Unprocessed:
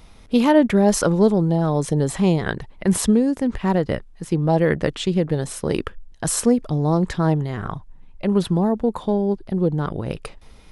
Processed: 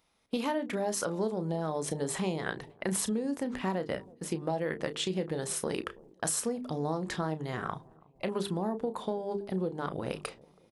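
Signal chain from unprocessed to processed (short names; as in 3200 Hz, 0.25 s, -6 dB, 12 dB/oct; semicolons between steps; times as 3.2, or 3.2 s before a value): gate -38 dBFS, range -17 dB; HPF 330 Hz 6 dB/oct; high shelf 10000 Hz +4.5 dB; notches 50/100/150/200/250/300/350/400/450 Hz; compressor 6:1, threshold -27 dBFS, peak gain reduction 14.5 dB; doubler 32 ms -11.5 dB; on a send: analogue delay 0.327 s, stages 2048, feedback 47%, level -23 dB; on the sum: gain -2 dB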